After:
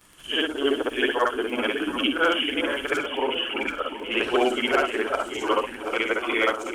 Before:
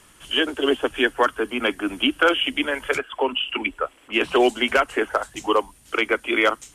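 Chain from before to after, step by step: short-time spectra conjugated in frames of 144 ms; crackle 19 per s -35 dBFS; echo whose repeats swap between lows and highs 366 ms, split 830 Hz, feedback 74%, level -7 dB

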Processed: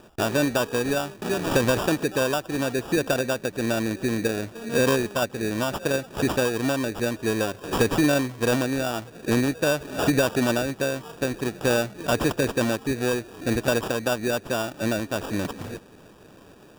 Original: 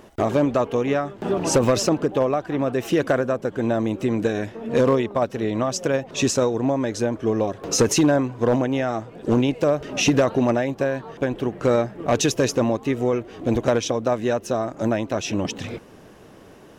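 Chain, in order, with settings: sample-and-hold 21×; trim -3 dB

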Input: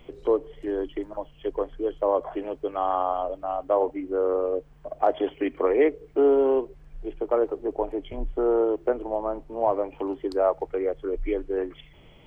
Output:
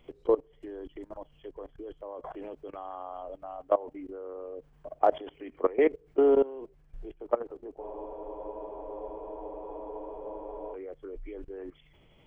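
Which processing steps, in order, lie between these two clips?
level held to a coarse grid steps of 20 dB; spectral freeze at 7.83 s, 2.92 s

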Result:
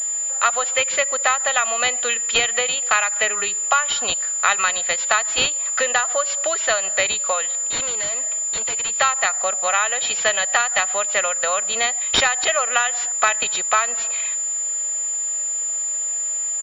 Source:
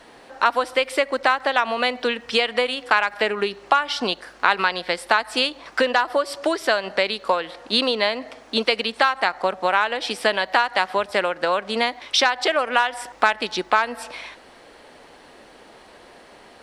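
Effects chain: comb 1.6 ms, depth 60%; 7.46–8.96 s: valve stage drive 26 dB, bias 0.45; tilt EQ +4.5 dB/octave; class-D stage that switches slowly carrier 7.1 kHz; trim -2.5 dB

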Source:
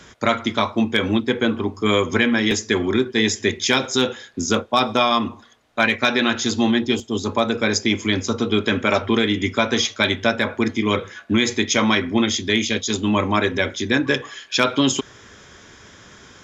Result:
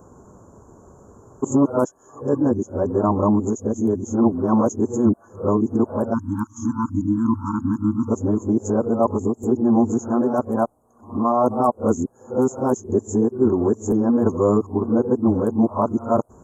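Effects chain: reverse the whole clip; inverse Chebyshev band-stop 1.9–4.8 kHz, stop band 50 dB; spectral selection erased 6.14–8.09 s, 340–840 Hz; trim +2 dB

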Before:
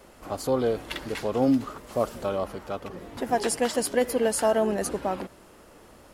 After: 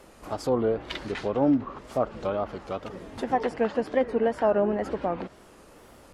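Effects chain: low-pass that closes with the level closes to 1.9 kHz, closed at -22.5 dBFS; wow and flutter 140 cents

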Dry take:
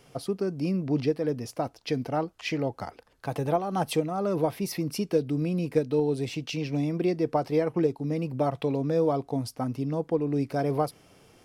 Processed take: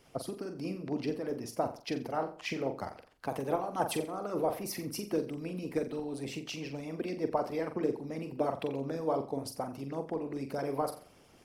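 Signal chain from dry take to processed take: flutter echo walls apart 7.5 m, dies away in 0.45 s; harmonic-percussive split harmonic -15 dB; dynamic bell 3.7 kHz, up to -5 dB, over -55 dBFS, Q 1

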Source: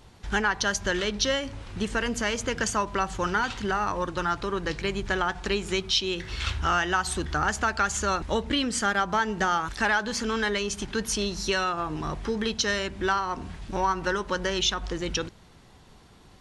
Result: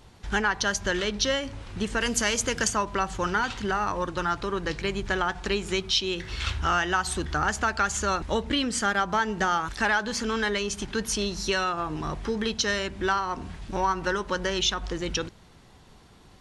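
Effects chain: 2.00–2.67 s: treble shelf 3.5 kHz -> 6.3 kHz +12 dB

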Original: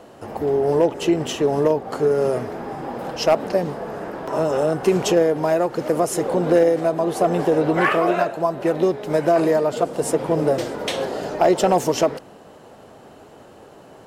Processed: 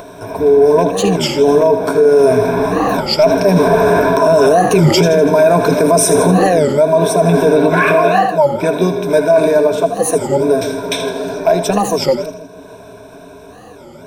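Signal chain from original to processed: Doppler pass-by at 4.58 s, 9 m/s, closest 3.9 m; rippled EQ curve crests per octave 1.6, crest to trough 17 dB; reverse; compression 8:1, threshold -30 dBFS, peak gain reduction 19 dB; reverse; tone controls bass +1 dB, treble +3 dB; upward compressor, threshold -54 dBFS; on a send: two-band feedback delay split 500 Hz, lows 150 ms, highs 80 ms, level -11 dB; on the sum: loudness maximiser +26 dB; warped record 33 1/3 rpm, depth 250 cents; trim -1 dB

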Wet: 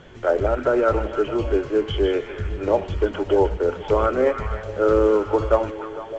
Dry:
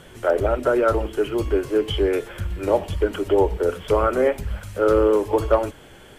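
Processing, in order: treble shelf 4.7 kHz -11 dB; repeats whose band climbs or falls 153 ms, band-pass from 2.6 kHz, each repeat -0.7 oct, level -5 dB; µ-law 128 kbps 16 kHz

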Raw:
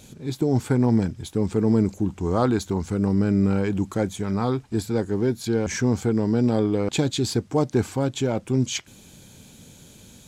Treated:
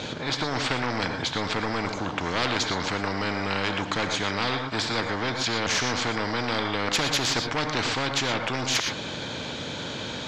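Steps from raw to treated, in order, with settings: cabinet simulation 170–4700 Hz, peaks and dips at 200 Hz -6 dB, 390 Hz -9 dB, 760 Hz -5 dB, 2.5 kHz -4 dB; saturation -20 dBFS, distortion -14 dB; treble shelf 3 kHz -9 dB; gated-style reverb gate 140 ms rising, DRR 10.5 dB; spectrum-flattening compressor 4:1; trim +7.5 dB

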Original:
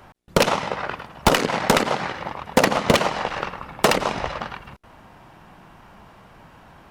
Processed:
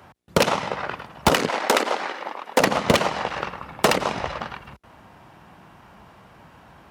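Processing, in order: high-pass 60 Hz 24 dB/octave, from 1.49 s 280 Hz, from 2.60 s 49 Hz; trim -1 dB

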